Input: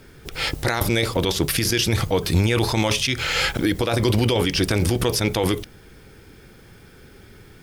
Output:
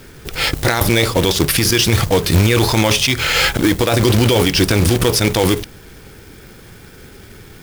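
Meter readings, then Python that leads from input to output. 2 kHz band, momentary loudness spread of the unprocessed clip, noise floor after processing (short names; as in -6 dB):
+6.5 dB, 4 LU, -40 dBFS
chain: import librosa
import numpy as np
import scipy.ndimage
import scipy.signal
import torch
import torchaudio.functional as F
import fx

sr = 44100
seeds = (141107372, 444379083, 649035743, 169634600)

p1 = np.clip(x, -10.0 ** (-17.5 / 20.0), 10.0 ** (-17.5 / 20.0))
p2 = x + (p1 * librosa.db_to_amplitude(-11.5))
p3 = fx.quant_companded(p2, sr, bits=4)
y = p3 * librosa.db_to_amplitude(4.5)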